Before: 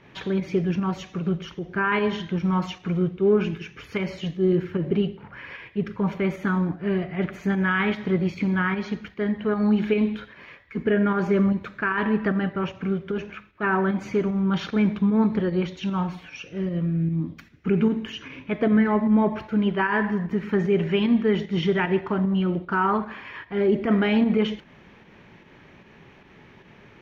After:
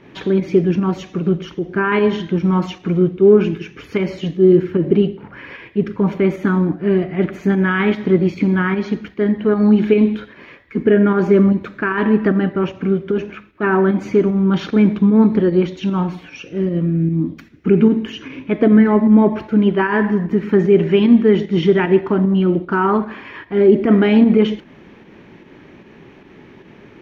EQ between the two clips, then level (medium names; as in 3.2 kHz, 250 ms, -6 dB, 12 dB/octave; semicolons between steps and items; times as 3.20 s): peaking EQ 310 Hz +9 dB 1.2 oct; +3.5 dB